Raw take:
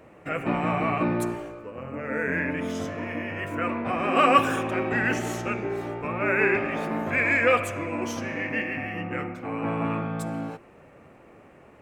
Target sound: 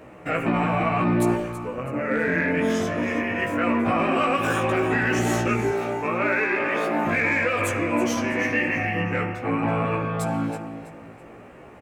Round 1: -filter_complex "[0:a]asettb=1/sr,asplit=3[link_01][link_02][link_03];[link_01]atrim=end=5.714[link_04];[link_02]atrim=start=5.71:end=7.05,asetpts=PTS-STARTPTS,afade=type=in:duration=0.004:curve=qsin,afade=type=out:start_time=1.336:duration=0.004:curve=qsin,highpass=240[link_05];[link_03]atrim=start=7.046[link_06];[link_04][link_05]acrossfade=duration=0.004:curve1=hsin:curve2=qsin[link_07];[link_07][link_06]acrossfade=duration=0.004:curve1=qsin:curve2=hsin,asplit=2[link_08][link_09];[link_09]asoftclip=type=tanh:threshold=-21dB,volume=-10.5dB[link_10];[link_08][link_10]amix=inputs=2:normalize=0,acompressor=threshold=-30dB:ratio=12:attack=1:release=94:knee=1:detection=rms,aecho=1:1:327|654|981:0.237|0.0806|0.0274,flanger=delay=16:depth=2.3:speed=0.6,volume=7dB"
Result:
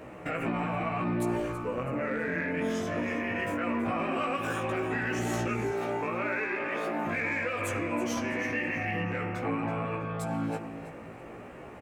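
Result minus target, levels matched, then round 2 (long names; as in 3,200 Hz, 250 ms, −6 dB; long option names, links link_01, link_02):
downward compressor: peak gain reduction +8.5 dB
-filter_complex "[0:a]asettb=1/sr,asplit=3[link_01][link_02][link_03];[link_01]atrim=end=5.714[link_04];[link_02]atrim=start=5.71:end=7.05,asetpts=PTS-STARTPTS,afade=type=in:duration=0.004:curve=qsin,afade=type=out:start_time=1.336:duration=0.004:curve=qsin,highpass=240[link_05];[link_03]atrim=start=7.046[link_06];[link_04][link_05]acrossfade=duration=0.004:curve1=hsin:curve2=qsin[link_07];[link_07][link_06]acrossfade=duration=0.004:curve1=qsin:curve2=hsin,asplit=2[link_08][link_09];[link_09]asoftclip=type=tanh:threshold=-21dB,volume=-10.5dB[link_10];[link_08][link_10]amix=inputs=2:normalize=0,acompressor=threshold=-20.5dB:ratio=12:attack=1:release=94:knee=1:detection=rms,aecho=1:1:327|654|981:0.237|0.0806|0.0274,flanger=delay=16:depth=2.3:speed=0.6,volume=7dB"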